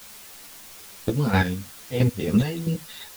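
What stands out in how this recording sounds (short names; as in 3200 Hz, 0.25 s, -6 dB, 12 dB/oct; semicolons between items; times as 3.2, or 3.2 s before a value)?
chopped level 3 Hz, depth 65%, duty 25%; a quantiser's noise floor 8-bit, dither triangular; a shimmering, thickened sound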